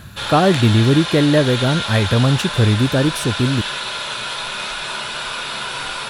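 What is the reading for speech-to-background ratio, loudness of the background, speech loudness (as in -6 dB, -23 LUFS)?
7.0 dB, -23.5 LUFS, -16.5 LUFS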